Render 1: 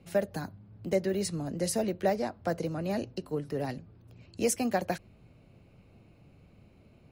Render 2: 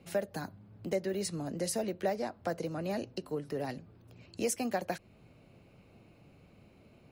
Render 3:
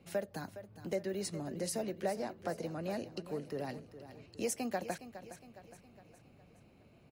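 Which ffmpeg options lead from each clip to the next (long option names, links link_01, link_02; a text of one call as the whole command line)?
ffmpeg -i in.wav -af "lowshelf=frequency=140:gain=-8.5,acompressor=threshold=-40dB:ratio=1.5,volume=2dB" out.wav
ffmpeg -i in.wav -af "aecho=1:1:413|826|1239|1652|2065:0.224|0.11|0.0538|0.0263|0.0129,volume=-3.5dB" out.wav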